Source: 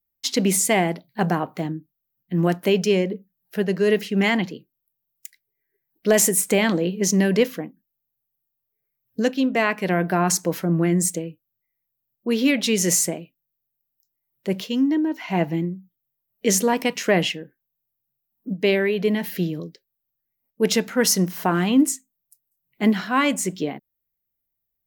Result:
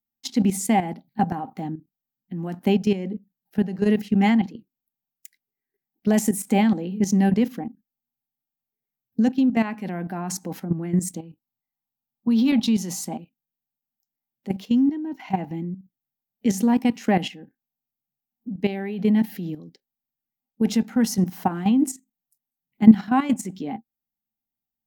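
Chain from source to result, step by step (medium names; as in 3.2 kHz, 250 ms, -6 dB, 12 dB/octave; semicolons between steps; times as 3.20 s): small resonant body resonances 230/790 Hz, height 17 dB, ringing for 60 ms; level held to a coarse grid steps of 12 dB; 11.14–13.19 s: graphic EQ 500/1000/2000/4000/8000 Hz -5/+8/-7/+6/-5 dB; trim -5 dB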